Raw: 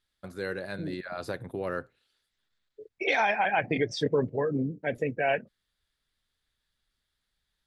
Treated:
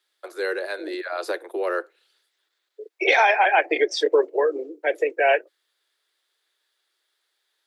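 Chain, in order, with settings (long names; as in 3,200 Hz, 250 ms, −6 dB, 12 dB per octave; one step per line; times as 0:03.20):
Butterworth high-pass 320 Hz 96 dB per octave
level +8 dB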